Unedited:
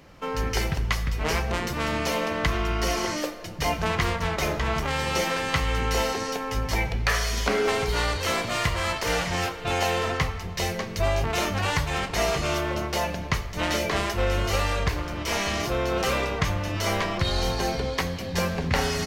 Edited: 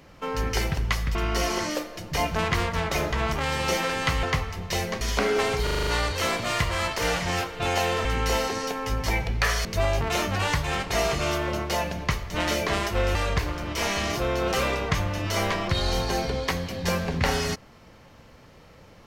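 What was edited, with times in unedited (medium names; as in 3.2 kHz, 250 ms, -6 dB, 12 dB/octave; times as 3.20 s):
1.15–2.62 s: delete
5.70–7.30 s: swap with 10.10–10.88 s
7.92 s: stutter 0.04 s, 7 plays
14.38–14.65 s: delete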